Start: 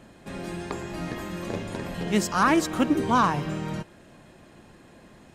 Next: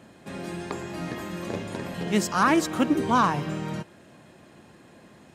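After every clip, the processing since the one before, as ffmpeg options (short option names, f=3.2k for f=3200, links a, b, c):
-af "highpass=87"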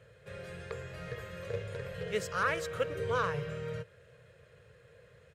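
-af "firequalizer=gain_entry='entry(120,0);entry(230,-28);entry(320,-30);entry(460,4);entry(770,-21);entry(1400,-5);entry(5400,-13)':delay=0.05:min_phase=1"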